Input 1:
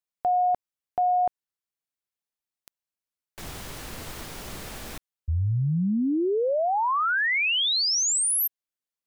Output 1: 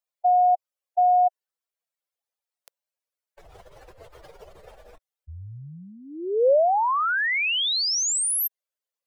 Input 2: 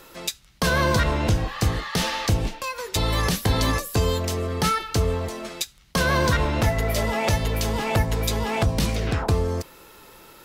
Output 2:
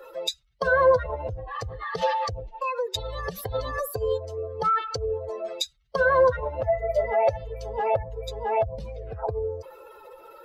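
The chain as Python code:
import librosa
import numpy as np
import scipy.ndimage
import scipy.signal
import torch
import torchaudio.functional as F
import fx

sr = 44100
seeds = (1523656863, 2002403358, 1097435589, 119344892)

y = fx.spec_expand(x, sr, power=2.3)
y = fx.low_shelf_res(y, sr, hz=360.0, db=-13.0, q=3.0)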